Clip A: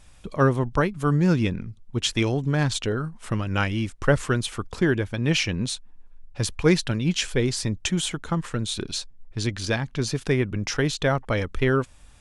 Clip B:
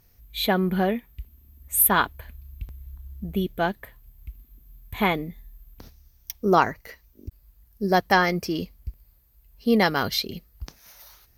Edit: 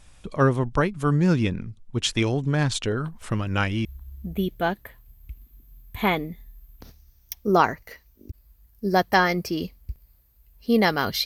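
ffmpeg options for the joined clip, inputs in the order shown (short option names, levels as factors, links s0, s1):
-filter_complex "[1:a]asplit=2[s0][s1];[0:a]apad=whole_dur=11.25,atrim=end=11.25,atrim=end=3.852[s2];[s1]atrim=start=2.828:end=10.23[s3];[s0]atrim=start=2.03:end=2.83,asetpts=PTS-STARTPTS,volume=0.188,afade=t=in:d=0.004:c=hsin,afade=t=out:st=0.796:d=0.004:c=hsin,adelay=134505S[s4];[s2][s3]acrossfade=d=0.004:c1=hsin:c2=hsin[s5];[s5][s4]amix=inputs=2:normalize=0"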